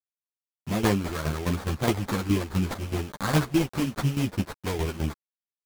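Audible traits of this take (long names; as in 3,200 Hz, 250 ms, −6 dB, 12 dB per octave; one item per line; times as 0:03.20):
aliases and images of a low sample rate 2,800 Hz, jitter 20%
tremolo saw down 4.8 Hz, depth 75%
a quantiser's noise floor 8 bits, dither none
a shimmering, thickened sound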